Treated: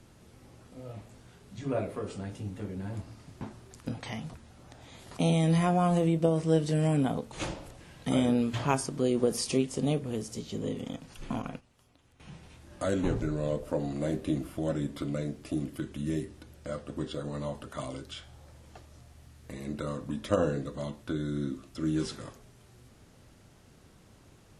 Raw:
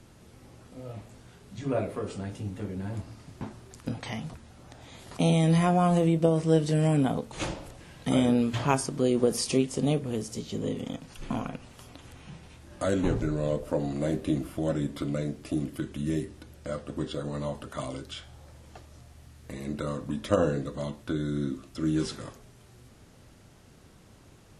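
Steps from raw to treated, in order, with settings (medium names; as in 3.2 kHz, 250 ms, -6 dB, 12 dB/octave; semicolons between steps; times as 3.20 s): 11.42–12.20 s: gate -38 dBFS, range -14 dB; trim -2.5 dB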